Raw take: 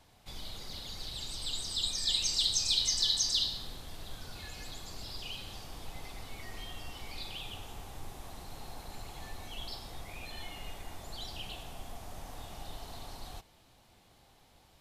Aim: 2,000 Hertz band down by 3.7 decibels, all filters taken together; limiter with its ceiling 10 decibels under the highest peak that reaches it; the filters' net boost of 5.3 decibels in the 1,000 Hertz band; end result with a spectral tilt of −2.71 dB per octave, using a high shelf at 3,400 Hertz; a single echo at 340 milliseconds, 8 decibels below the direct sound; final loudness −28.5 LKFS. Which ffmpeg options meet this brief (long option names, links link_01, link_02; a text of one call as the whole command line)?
ffmpeg -i in.wav -af "equalizer=frequency=1000:width_type=o:gain=8.5,equalizer=frequency=2000:width_type=o:gain=-4,highshelf=frequency=3400:gain=-8,alimiter=level_in=6.5dB:limit=-24dB:level=0:latency=1,volume=-6.5dB,aecho=1:1:340:0.398,volume=14dB" out.wav